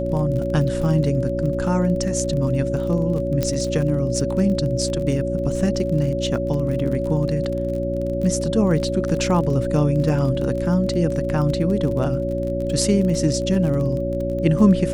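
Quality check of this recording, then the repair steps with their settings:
crackle 33 per s -27 dBFS
hum 60 Hz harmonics 6 -26 dBFS
whine 560 Hz -24 dBFS
3.43 s: pop -8 dBFS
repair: de-click; de-hum 60 Hz, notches 6; band-stop 560 Hz, Q 30

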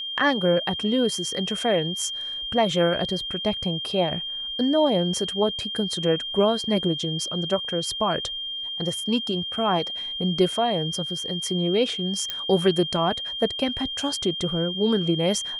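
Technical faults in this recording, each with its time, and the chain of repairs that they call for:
whine 3.2 kHz -29 dBFS
12.30 s: pop -12 dBFS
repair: de-click; band-stop 3.2 kHz, Q 30

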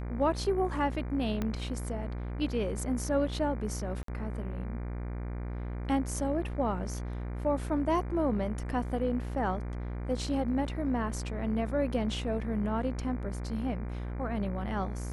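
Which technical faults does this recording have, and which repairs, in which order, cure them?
buzz 60 Hz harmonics 40 -36 dBFS
1.42 s: pop -19 dBFS
4.03–4.08 s: dropout 53 ms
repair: de-click; de-hum 60 Hz, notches 40; interpolate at 4.03 s, 53 ms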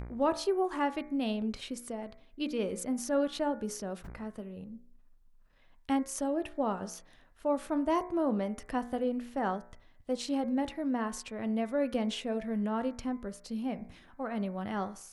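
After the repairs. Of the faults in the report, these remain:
1.42 s: pop

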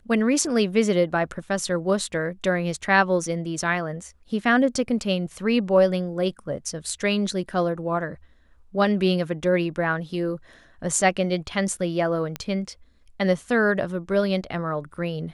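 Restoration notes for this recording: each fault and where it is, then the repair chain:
12.36 s: pop -14 dBFS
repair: de-click

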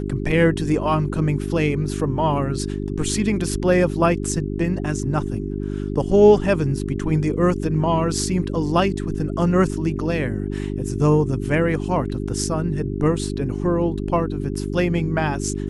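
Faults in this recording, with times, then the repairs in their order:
hum 50 Hz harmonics 8 -26 dBFS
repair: de-hum 50 Hz, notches 8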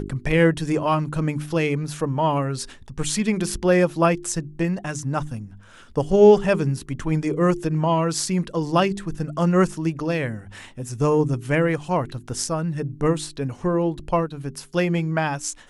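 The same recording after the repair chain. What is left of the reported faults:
nothing left

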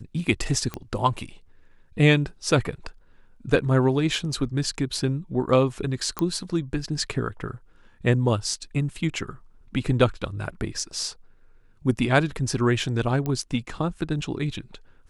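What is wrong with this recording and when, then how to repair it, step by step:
0.74 s: pop -15 dBFS
6.19 s: pop -11 dBFS
13.26 s: pop -16 dBFS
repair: de-click

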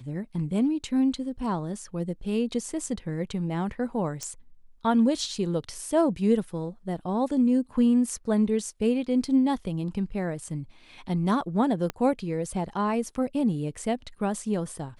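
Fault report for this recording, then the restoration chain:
4.23 s: pop -19 dBFS
11.90 s: pop -16 dBFS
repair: de-click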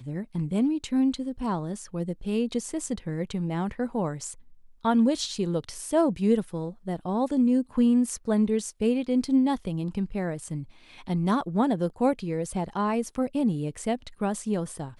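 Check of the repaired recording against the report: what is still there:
11.90 s: pop

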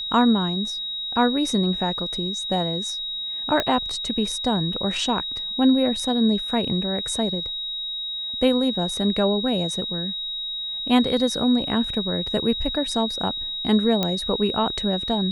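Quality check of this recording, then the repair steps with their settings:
whine 3.8 kHz -27 dBFS
3.60 s: pop -8 dBFS
14.03 s: pop -8 dBFS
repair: de-click; band-stop 3.8 kHz, Q 30

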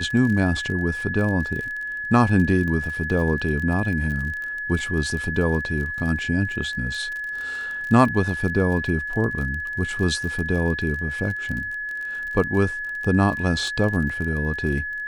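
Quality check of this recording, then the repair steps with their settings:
crackle 32 per s -29 dBFS
whine 1.7 kHz -27 dBFS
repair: de-click; band-stop 1.7 kHz, Q 30

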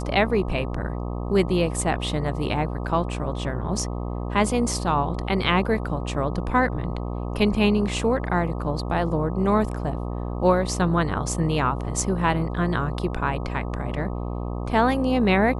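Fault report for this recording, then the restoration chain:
buzz 60 Hz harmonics 21 -29 dBFS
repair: de-hum 60 Hz, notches 21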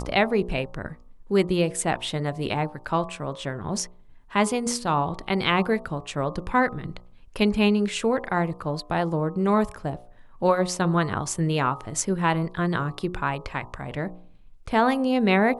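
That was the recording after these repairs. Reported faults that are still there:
nothing left

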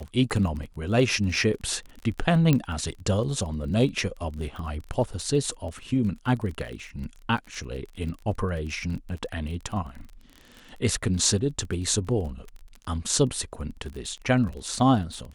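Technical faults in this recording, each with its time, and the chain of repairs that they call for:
crackle 28 per s -34 dBFS
2.53 s: pop -9 dBFS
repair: de-click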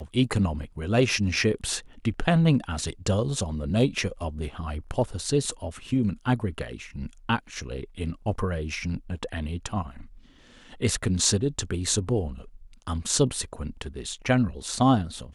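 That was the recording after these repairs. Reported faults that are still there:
nothing left

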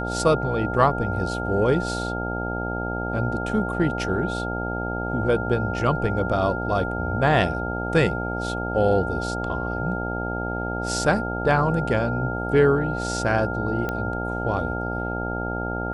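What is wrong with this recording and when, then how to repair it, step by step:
buzz 60 Hz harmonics 15 -29 dBFS
whine 1.4 kHz -30 dBFS
13.89 s: pop -14 dBFS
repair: de-click; band-stop 1.4 kHz, Q 30; de-hum 60 Hz, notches 15

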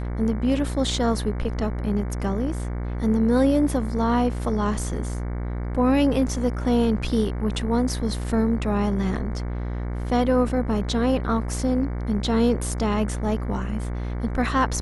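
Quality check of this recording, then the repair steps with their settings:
buzz 60 Hz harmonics 38 -28 dBFS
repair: de-hum 60 Hz, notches 38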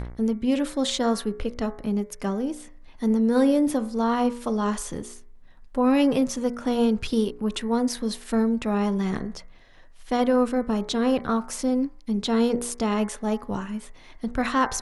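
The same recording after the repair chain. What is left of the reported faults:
nothing left

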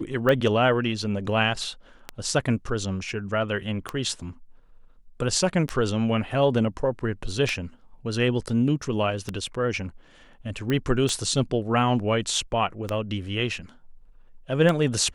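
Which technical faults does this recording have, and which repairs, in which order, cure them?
tick 33 1/3 rpm -12 dBFS
10.70 s: pop -14 dBFS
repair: de-click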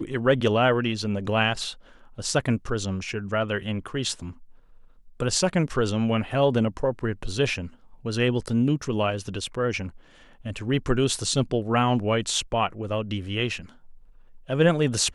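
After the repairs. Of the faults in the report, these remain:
nothing left

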